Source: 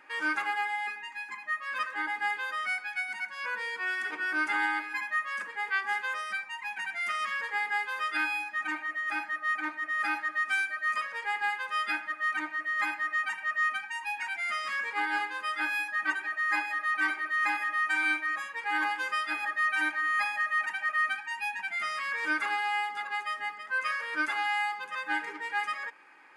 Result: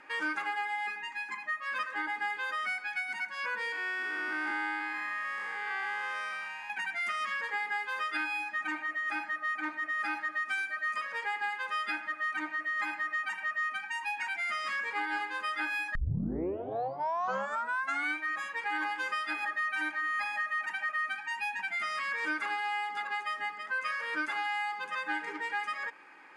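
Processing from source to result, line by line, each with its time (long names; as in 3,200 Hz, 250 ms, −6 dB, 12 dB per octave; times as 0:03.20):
0:03.72–0:06.70: spectrum smeared in time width 299 ms
0:15.95: tape start 2.21 s
whole clip: low-pass filter 10,000 Hz 12 dB per octave; low-shelf EQ 440 Hz +4 dB; downward compressor 3 to 1, threshold −33 dBFS; level +1.5 dB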